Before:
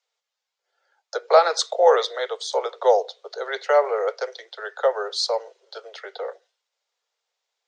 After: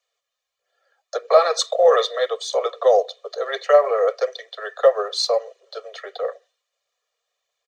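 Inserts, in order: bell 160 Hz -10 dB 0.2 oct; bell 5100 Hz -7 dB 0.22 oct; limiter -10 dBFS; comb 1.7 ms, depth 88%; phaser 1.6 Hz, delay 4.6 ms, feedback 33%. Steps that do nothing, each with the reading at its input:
bell 160 Hz: input band starts at 360 Hz

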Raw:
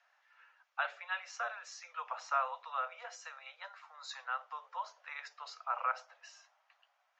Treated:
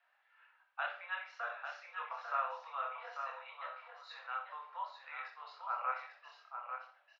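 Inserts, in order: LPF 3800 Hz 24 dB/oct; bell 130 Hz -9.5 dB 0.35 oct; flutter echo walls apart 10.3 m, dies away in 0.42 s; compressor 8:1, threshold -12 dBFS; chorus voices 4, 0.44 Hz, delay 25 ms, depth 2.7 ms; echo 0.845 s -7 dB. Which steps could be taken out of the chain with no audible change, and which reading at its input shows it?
bell 130 Hz: input band starts at 430 Hz; compressor, threshold -12 dBFS: input peak -20.0 dBFS

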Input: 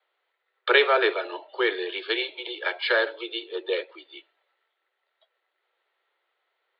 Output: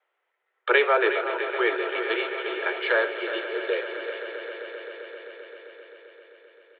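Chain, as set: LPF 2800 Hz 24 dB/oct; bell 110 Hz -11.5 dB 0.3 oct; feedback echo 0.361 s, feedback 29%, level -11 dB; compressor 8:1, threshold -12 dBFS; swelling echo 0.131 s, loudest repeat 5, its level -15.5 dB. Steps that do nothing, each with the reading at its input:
bell 110 Hz: input band starts at 290 Hz

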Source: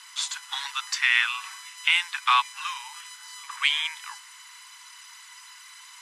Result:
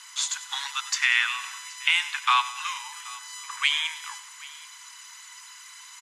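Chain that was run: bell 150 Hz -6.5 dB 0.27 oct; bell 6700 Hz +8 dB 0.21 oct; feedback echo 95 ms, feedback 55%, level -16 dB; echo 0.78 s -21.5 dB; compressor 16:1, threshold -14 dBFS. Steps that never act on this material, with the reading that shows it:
bell 150 Hz: input band starts at 720 Hz

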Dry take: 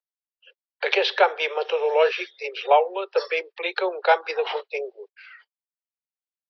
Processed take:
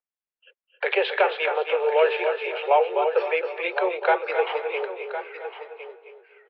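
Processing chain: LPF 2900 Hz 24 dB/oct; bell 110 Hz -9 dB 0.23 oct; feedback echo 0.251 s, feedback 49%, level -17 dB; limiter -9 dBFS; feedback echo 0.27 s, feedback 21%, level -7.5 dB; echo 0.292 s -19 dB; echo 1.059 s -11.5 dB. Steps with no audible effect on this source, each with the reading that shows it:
bell 110 Hz: input band starts at 320 Hz

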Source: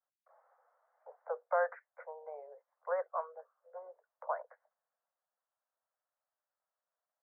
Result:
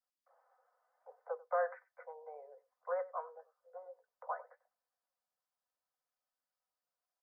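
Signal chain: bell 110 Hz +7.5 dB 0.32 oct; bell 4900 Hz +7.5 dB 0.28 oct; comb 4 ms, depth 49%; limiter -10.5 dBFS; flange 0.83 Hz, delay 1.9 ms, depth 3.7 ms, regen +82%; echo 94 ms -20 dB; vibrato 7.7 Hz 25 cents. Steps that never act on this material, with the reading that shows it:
bell 110 Hz: input band starts at 400 Hz; bell 4900 Hz: input band ends at 1900 Hz; limiter -10.5 dBFS: input peak -18.5 dBFS

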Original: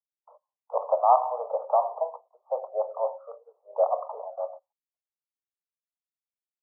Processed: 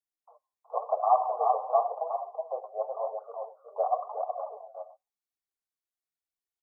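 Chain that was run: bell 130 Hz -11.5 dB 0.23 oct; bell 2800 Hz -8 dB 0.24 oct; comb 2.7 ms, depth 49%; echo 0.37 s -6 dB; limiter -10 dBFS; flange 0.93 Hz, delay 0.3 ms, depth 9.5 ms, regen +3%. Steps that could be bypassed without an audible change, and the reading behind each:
bell 130 Hz: input band starts at 400 Hz; bell 2800 Hz: input band ends at 1300 Hz

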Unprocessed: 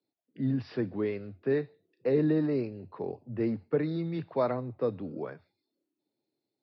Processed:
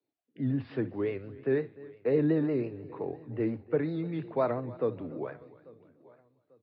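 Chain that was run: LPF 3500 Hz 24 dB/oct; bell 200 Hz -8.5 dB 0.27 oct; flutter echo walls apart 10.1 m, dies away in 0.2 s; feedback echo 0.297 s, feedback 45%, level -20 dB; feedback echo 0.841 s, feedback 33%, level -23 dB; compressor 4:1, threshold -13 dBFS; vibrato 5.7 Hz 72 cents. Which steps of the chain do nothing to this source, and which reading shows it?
compressor, threshold -13 dBFS: input peak -15.0 dBFS

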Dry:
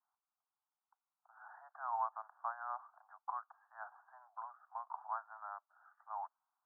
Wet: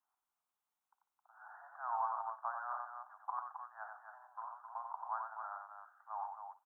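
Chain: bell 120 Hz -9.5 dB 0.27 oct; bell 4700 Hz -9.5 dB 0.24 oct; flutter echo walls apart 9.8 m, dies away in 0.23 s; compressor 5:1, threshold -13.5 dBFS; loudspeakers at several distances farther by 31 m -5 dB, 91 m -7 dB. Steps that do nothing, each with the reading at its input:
bell 120 Hz: input band starts at 540 Hz; bell 4700 Hz: input band ends at 1800 Hz; compressor, threshold -13.5 dBFS: input peak -25.0 dBFS

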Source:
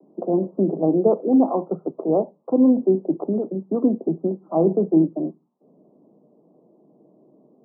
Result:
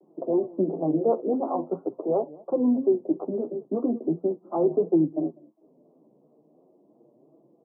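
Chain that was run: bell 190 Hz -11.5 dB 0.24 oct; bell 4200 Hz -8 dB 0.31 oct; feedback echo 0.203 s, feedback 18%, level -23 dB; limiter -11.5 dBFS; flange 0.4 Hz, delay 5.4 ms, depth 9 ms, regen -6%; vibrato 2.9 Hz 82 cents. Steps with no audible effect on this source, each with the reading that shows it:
bell 4200 Hz: input band ends at 850 Hz

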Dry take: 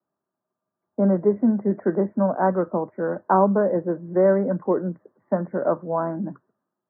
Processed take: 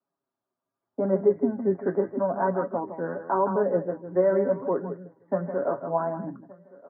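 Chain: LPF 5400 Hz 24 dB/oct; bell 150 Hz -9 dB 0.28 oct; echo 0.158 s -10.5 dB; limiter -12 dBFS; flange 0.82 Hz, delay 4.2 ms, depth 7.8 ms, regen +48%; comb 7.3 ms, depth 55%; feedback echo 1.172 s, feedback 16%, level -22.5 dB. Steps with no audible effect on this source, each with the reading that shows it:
LPF 5400 Hz: input band ends at 1600 Hz

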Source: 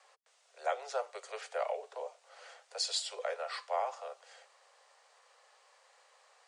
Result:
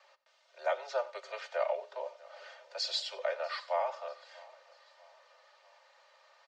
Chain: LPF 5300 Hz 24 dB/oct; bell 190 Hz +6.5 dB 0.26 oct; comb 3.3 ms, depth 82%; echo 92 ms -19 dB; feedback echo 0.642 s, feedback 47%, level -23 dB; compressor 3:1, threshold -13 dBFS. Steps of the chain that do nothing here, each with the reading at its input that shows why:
bell 190 Hz: input band starts at 380 Hz; compressor, threshold -13 dBFS: input peak -20.5 dBFS

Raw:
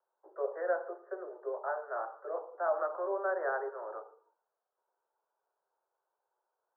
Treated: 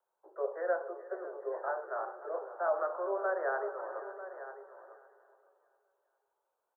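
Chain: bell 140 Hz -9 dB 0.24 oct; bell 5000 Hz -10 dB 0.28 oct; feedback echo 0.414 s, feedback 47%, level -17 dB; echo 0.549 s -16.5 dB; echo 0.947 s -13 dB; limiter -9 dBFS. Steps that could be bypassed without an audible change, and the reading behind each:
bell 140 Hz: input band starts at 300 Hz; bell 5000 Hz: input band ends at 1900 Hz; limiter -9 dBFS: input peak -19.5 dBFS

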